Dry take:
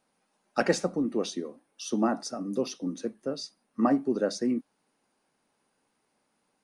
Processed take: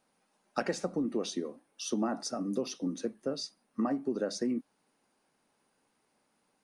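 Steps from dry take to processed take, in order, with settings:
downward compressor 12 to 1, threshold −27 dBFS, peak gain reduction 10.5 dB

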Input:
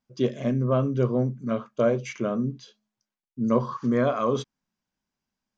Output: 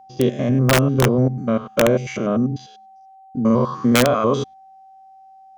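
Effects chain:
spectrum averaged block by block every 100 ms
steady tone 770 Hz −52 dBFS
wrap-around overflow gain 15 dB
level +8.5 dB

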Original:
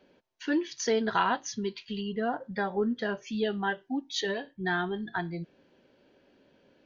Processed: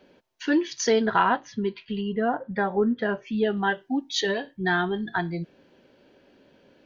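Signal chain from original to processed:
0:01.06–0:03.57: low-pass filter 2,400 Hz 12 dB per octave
level +5.5 dB

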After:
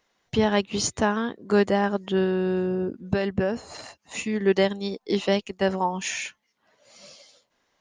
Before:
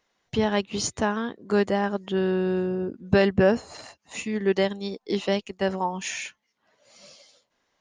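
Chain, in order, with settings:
0:02.23–0:04.42: downward compressor 12 to 1, threshold −22 dBFS, peak gain reduction 9.5 dB
level +2 dB

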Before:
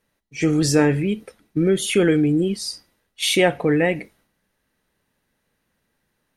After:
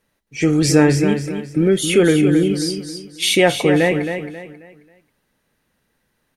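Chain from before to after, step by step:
repeating echo 269 ms, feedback 33%, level −8 dB
level +3 dB

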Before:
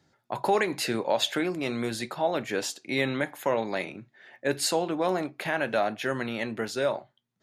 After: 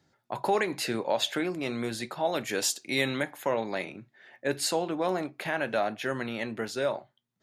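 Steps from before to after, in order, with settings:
0:02.25–0:03.23: high-shelf EQ 4,200 Hz +11.5 dB
level −2 dB

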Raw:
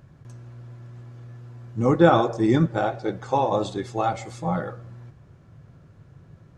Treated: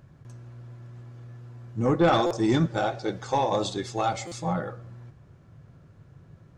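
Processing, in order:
0:02.08–0:04.53: parametric band 5,300 Hz +9 dB 1.9 octaves
soft clipping −11.5 dBFS, distortion −15 dB
buffer that repeats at 0:02.26/0:04.27, samples 256, times 7
level −2 dB

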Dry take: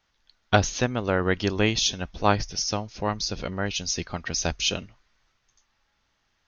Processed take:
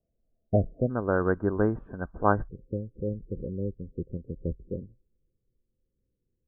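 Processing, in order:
Chebyshev low-pass with heavy ripple 690 Hz, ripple 3 dB, from 0:00.89 1,600 Hz, from 0:02.47 530 Hz

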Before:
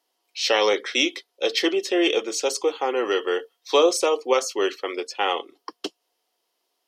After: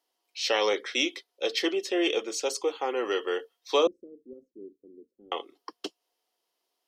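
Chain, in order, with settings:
0:03.87–0:05.32: inverse Chebyshev low-pass filter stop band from 870 Hz, stop band 60 dB
level −5.5 dB

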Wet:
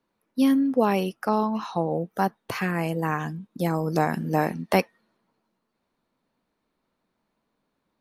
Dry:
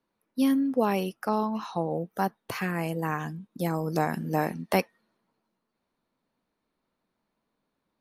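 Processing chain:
high-shelf EQ 9,100 Hz −5.5 dB
level +3.5 dB

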